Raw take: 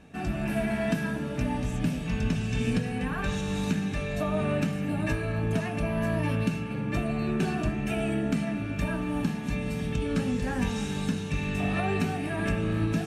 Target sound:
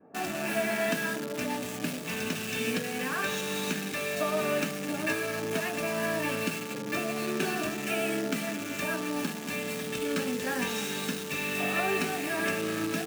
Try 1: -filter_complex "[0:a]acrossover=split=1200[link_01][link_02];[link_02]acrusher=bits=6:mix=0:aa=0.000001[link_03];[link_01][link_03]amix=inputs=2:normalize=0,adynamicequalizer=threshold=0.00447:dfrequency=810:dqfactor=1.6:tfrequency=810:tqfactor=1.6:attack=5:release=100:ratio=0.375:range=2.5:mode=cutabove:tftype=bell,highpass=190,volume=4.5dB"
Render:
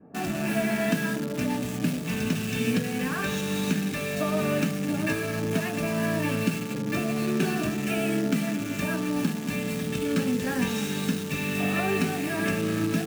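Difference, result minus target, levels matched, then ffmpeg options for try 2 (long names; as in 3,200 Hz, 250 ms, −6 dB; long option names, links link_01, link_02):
250 Hz band +4.0 dB
-filter_complex "[0:a]acrossover=split=1200[link_01][link_02];[link_02]acrusher=bits=6:mix=0:aa=0.000001[link_03];[link_01][link_03]amix=inputs=2:normalize=0,adynamicequalizer=threshold=0.00447:dfrequency=810:dqfactor=1.6:tfrequency=810:tqfactor=1.6:attack=5:release=100:ratio=0.375:range=2.5:mode=cutabove:tftype=bell,highpass=390,volume=4.5dB"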